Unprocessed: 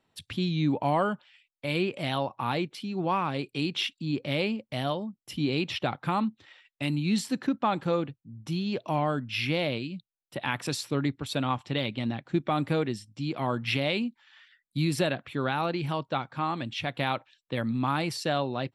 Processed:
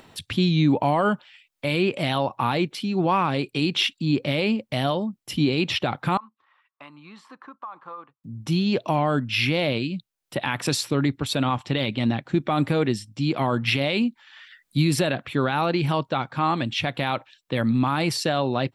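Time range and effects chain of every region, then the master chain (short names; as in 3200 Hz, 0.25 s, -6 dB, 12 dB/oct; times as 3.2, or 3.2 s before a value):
6.17–8.24 band-pass 1100 Hz, Q 7.7 + compressor, threshold -41 dBFS
whole clip: limiter -19.5 dBFS; upward compressor, threshold -47 dBFS; gain +8 dB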